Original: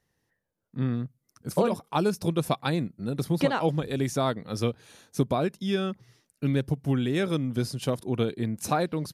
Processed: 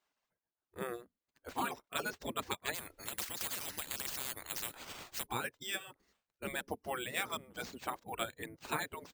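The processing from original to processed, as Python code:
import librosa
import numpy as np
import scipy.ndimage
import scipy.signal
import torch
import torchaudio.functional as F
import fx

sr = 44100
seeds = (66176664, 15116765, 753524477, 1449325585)

y = fx.dereverb_blind(x, sr, rt60_s=1.3)
y = fx.spec_gate(y, sr, threshold_db=-15, keep='weak')
y = fx.high_shelf(y, sr, hz=4200.0, db=-12.0)
y = np.repeat(y[::4], 4)[:len(y)]
y = fx.spectral_comp(y, sr, ratio=10.0, at=(2.73, 5.25), fade=0.02)
y = F.gain(torch.from_numpy(y), 3.5).numpy()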